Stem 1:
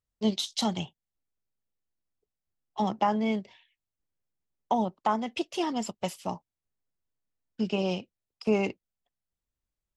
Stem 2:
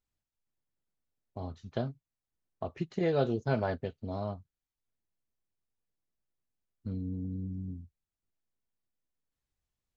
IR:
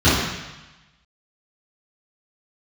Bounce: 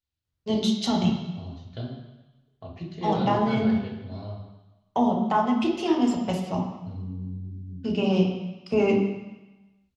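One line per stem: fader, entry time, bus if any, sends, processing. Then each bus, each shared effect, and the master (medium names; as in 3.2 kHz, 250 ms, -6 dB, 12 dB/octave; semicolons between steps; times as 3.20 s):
-0.5 dB, 0.25 s, send -22.5 dB, treble shelf 8.1 kHz -8 dB
-11.0 dB, 0.00 s, send -21 dB, peaking EQ 3.8 kHz +11.5 dB 1.4 oct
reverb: on, RT60 1.0 s, pre-delay 3 ms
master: none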